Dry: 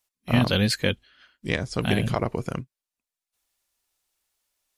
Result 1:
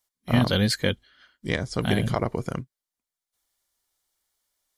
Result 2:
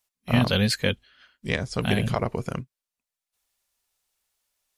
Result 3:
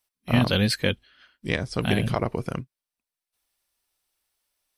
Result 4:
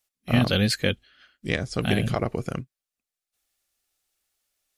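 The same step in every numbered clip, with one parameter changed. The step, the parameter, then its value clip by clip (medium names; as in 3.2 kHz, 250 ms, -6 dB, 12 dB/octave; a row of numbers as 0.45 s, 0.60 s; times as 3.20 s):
band-stop, frequency: 2.6 kHz, 320 Hz, 6.9 kHz, 970 Hz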